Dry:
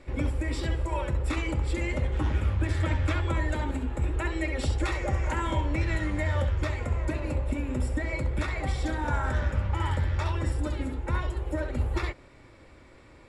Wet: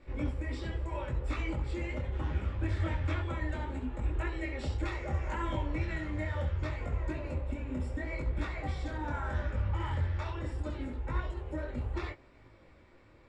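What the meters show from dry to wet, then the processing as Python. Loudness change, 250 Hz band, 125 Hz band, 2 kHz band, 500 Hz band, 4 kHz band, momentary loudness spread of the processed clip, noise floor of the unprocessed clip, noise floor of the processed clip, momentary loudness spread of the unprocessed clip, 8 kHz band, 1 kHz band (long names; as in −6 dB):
−6.5 dB, −6.0 dB, −6.0 dB, −7.0 dB, −6.5 dB, −8.5 dB, 4 LU, −53 dBFS, −59 dBFS, 3 LU, −13.5 dB, −6.5 dB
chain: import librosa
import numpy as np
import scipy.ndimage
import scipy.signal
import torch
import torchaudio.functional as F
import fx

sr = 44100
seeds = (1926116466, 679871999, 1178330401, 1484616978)

y = scipy.signal.sosfilt(scipy.signal.butter(2, 7700.0, 'lowpass', fs=sr, output='sos'), x)
y = fx.high_shelf(y, sr, hz=5900.0, db=-7.5)
y = fx.detune_double(y, sr, cents=25)
y = y * 10.0 ** (-2.5 / 20.0)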